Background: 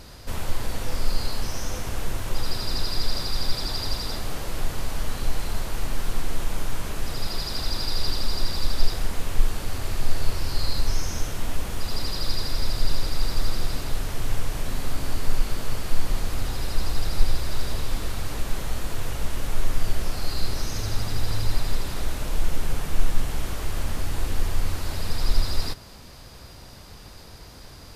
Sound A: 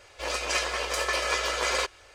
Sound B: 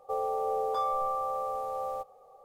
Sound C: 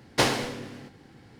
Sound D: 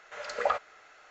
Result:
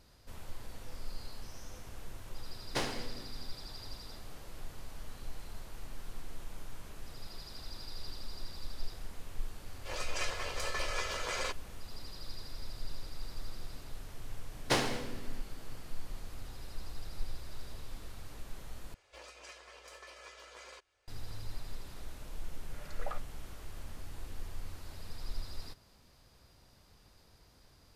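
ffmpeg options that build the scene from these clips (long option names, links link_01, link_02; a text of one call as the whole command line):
ffmpeg -i bed.wav -i cue0.wav -i cue1.wav -i cue2.wav -i cue3.wav -filter_complex "[3:a]asplit=2[link_01][link_02];[1:a]asplit=2[link_03][link_04];[0:a]volume=-18dB[link_05];[link_04]acompressor=threshold=-40dB:ratio=2.5:attack=95:release=893:knee=1:detection=rms[link_06];[link_05]asplit=2[link_07][link_08];[link_07]atrim=end=18.944[link_09];[link_06]atrim=end=2.14,asetpts=PTS-STARTPTS,volume=-15dB[link_10];[link_08]atrim=start=21.076[link_11];[link_01]atrim=end=1.39,asetpts=PTS-STARTPTS,volume=-12.5dB,afade=type=in:duration=0.004:curve=hsin,afade=type=out:start_time=1.386:duration=0.004:curve=hsin,adelay=2570[link_12];[link_03]atrim=end=2.14,asetpts=PTS-STARTPTS,volume=-10dB,afade=type=in:duration=0.004:curve=hsin,afade=type=out:start_time=2.136:duration=0.004:curve=hsin,adelay=9660[link_13];[link_02]atrim=end=1.39,asetpts=PTS-STARTPTS,volume=-7dB,afade=type=in:duration=0.004:curve=hsin,afade=type=out:start_time=1.386:duration=0.004:curve=hsin,adelay=14520[link_14];[4:a]atrim=end=1.1,asetpts=PTS-STARTPTS,volume=-15.5dB,afade=type=in:duration=0.004:curve=hsin,afade=type=out:start_time=1.096:duration=0.004:curve=hsin,adelay=22610[link_15];[link_09][link_10]acrossfade=duration=0.004:curve1=hsin:curve2=hsin[link_16];[link_16][link_11]acrossfade=duration=0.004:curve1=hsin:curve2=hsin[link_17];[link_17][link_12][link_13][link_14][link_15]amix=inputs=5:normalize=0" out.wav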